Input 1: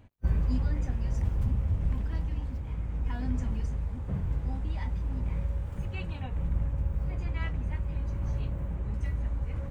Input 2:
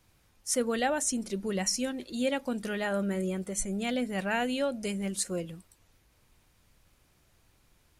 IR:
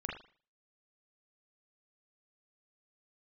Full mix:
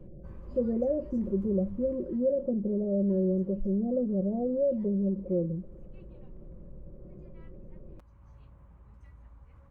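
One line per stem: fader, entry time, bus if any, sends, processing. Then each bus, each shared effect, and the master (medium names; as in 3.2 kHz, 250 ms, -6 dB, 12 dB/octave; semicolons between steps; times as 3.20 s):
1.88 s -13 dB -> 2.31 s -21.5 dB, 0.00 s, no send, auto duck -7 dB, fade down 0.20 s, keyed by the second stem
-2.0 dB, 0.00 s, no send, steep low-pass 590 Hz 72 dB/octave; comb 5.5 ms, depth 70%; level flattener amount 50%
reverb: none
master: peaking EQ 1.1 kHz +10 dB 0.84 oct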